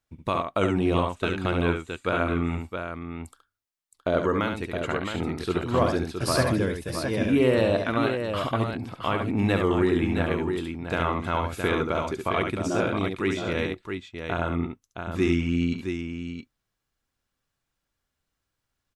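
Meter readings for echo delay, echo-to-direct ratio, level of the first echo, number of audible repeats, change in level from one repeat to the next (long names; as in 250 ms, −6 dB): 70 ms, −3.0 dB, −5.5 dB, 2, repeats not evenly spaced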